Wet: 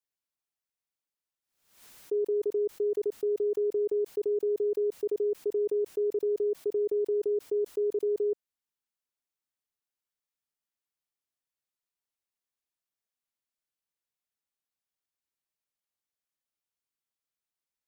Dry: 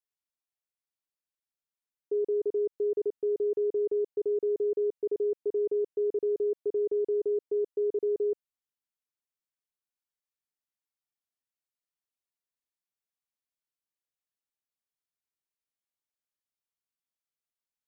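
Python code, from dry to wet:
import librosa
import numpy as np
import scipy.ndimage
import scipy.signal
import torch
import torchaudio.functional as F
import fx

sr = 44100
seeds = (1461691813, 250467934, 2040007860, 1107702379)

y = fx.pre_swell(x, sr, db_per_s=93.0)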